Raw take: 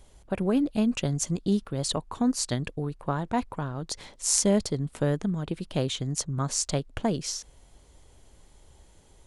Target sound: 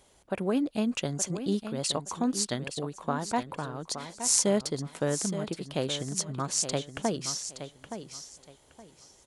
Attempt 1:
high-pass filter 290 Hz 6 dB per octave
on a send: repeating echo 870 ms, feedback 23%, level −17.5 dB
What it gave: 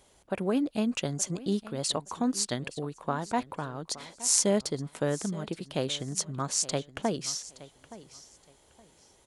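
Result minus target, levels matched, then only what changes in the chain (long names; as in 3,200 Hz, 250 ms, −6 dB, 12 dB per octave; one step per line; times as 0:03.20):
echo-to-direct −7.5 dB
change: repeating echo 870 ms, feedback 23%, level −10 dB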